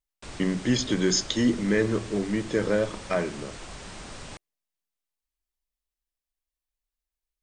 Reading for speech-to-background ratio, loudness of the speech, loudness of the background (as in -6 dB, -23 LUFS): 15.5 dB, -26.0 LUFS, -41.5 LUFS